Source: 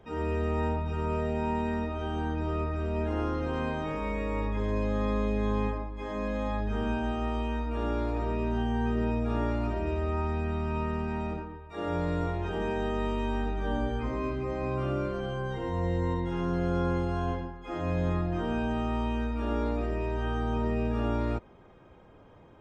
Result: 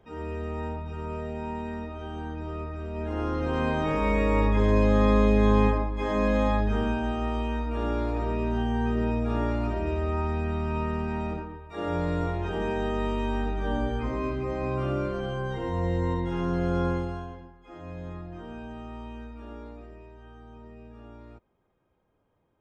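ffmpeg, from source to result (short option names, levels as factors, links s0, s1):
-af "volume=2.51,afade=t=in:st=2.93:d=1.23:silence=0.251189,afade=t=out:st=6.39:d=0.56:silence=0.501187,afade=t=out:st=16.86:d=0.43:silence=0.251189,afade=t=out:st=19.19:d=0.97:silence=0.398107"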